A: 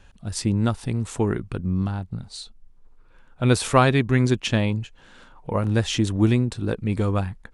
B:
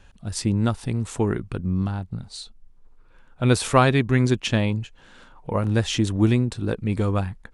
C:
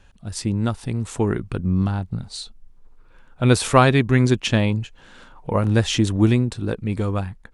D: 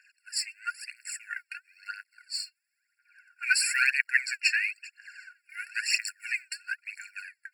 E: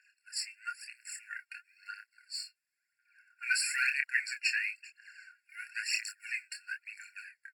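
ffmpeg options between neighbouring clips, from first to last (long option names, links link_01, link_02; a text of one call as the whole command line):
ffmpeg -i in.wav -af anull out.wav
ffmpeg -i in.wav -af "dynaudnorm=framelen=290:gausssize=11:maxgain=11.5dB,volume=-1dB" out.wav
ffmpeg -i in.wav -af "aphaser=in_gain=1:out_gain=1:delay=3.4:decay=0.72:speed=1:type=triangular,afftfilt=real='re*eq(mod(floor(b*sr/1024/1400),2),1)':imag='im*eq(mod(floor(b*sr/1024/1400),2),1)':win_size=1024:overlap=0.75" out.wav
ffmpeg -i in.wav -filter_complex "[0:a]asplit=2[link_01][link_02];[link_02]adelay=27,volume=-6dB[link_03];[link_01][link_03]amix=inputs=2:normalize=0,volume=-6.5dB" -ar 44100 -c:a aac -b:a 96k out.aac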